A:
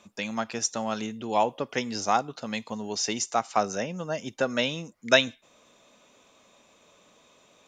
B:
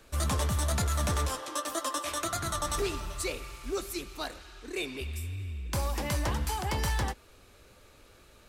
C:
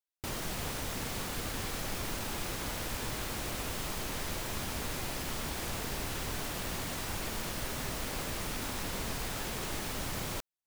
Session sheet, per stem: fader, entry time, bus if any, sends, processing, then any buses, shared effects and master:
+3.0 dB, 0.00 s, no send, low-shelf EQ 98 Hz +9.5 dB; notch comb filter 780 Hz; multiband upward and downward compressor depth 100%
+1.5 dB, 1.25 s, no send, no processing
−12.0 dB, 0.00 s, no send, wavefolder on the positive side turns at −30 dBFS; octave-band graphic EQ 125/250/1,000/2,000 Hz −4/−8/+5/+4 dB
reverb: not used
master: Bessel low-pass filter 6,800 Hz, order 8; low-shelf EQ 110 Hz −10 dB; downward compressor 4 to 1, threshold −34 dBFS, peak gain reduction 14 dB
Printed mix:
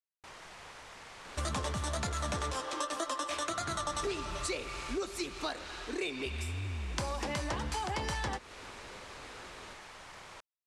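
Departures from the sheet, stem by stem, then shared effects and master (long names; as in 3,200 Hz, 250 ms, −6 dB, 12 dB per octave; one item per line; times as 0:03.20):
stem A: muted
stem B +1.5 dB → +8.0 dB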